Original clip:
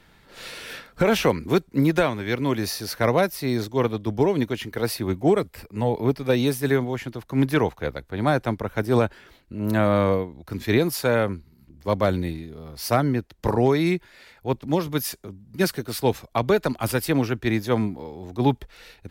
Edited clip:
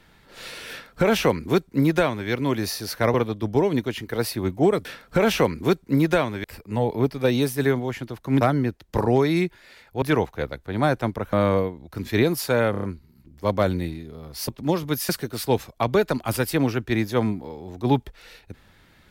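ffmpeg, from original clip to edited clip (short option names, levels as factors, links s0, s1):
-filter_complex "[0:a]asplit=13[s0][s1][s2][s3][s4][s5][s6][s7][s8][s9][s10][s11][s12];[s0]atrim=end=3.142[s13];[s1]atrim=start=3.778:end=5.492[s14];[s2]atrim=start=0.698:end=2.292[s15];[s3]atrim=start=5.488:end=7.462[s16];[s4]atrim=start=12.908:end=14.522[s17];[s5]atrim=start=7.458:end=8.772[s18];[s6]atrim=start=9.878:end=11.292[s19];[s7]atrim=start=11.258:end=11.292[s20];[s8]atrim=start=11.258:end=11.292[s21];[s9]atrim=start=11.258:end=11.292[s22];[s10]atrim=start=11.258:end=12.912[s23];[s11]atrim=start=14.518:end=15.132[s24];[s12]atrim=start=15.638[s25];[s13][s14]acrossfade=d=0.004:c1=hsin:c2=hsin[s26];[s26][s15]acrossfade=d=0.004:c1=hsin:c2=hsin[s27];[s27][s16]acrossfade=d=0.004:c1=hsin:c2=hsin[s28];[s28][s17]acrossfade=d=0.004:c1=hsin:c2=hsin[s29];[s29][s18]acrossfade=d=0.004:c1=hsin:c2=hsin[s30];[s30][s19]acrossfade=d=0.004:c1=hsin:c2=hsin[s31];[s31][s20]acrossfade=d=0.004:c1=hsin:c2=hsin[s32];[s32][s21]acrossfade=d=0.004:c1=hsin:c2=hsin[s33];[s33][s22]acrossfade=d=0.004:c1=hsin:c2=hsin[s34];[s34][s23]acrossfade=d=0.004:c1=hsin:c2=hsin[s35];[s35][s24]acrossfade=d=0.004:c1=hsin:c2=hsin[s36];[s36][s25]acrossfade=d=0.004:c1=hsin:c2=hsin"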